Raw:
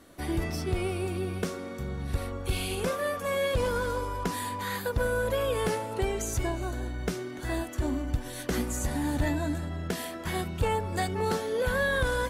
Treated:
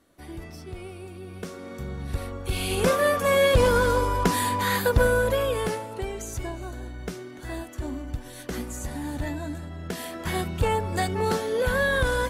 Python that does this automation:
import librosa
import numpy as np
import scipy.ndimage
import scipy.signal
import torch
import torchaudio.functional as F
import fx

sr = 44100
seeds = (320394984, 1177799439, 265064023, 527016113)

y = fx.gain(x, sr, db=fx.line((1.2, -9.0), (1.75, 0.5), (2.47, 0.5), (2.89, 8.5), (4.96, 8.5), (6.01, -3.0), (9.75, -3.0), (10.24, 3.5)))